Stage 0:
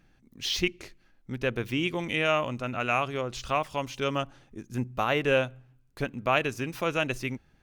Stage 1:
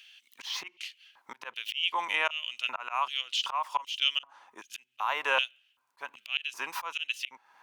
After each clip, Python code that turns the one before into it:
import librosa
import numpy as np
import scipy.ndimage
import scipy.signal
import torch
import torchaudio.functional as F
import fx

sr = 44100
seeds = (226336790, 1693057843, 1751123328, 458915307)

y = fx.filter_lfo_highpass(x, sr, shape='square', hz=1.3, low_hz=970.0, high_hz=3000.0, q=7.7)
y = fx.auto_swell(y, sr, attack_ms=309.0)
y = fx.band_squash(y, sr, depth_pct=40)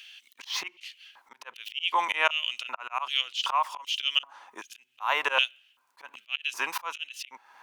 y = fx.low_shelf(x, sr, hz=120.0, db=-12.0)
y = fx.auto_swell(y, sr, attack_ms=131.0)
y = y * librosa.db_to_amplitude(6.0)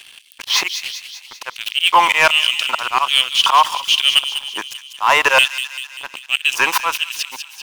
y = fx.leveller(x, sr, passes=3)
y = fx.echo_wet_highpass(y, sr, ms=195, feedback_pct=57, hz=3000.0, wet_db=-7)
y = y * librosa.db_to_amplitude(4.5)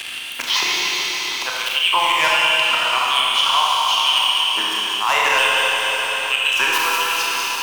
y = fx.rev_schroeder(x, sr, rt60_s=2.9, comb_ms=25, drr_db=-5.0)
y = fx.band_squash(y, sr, depth_pct=70)
y = y * librosa.db_to_amplitude(-7.5)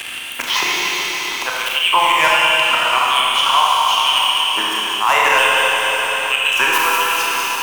y = fx.peak_eq(x, sr, hz=4400.0, db=-8.0, octaves=1.0)
y = y * librosa.db_to_amplitude(4.5)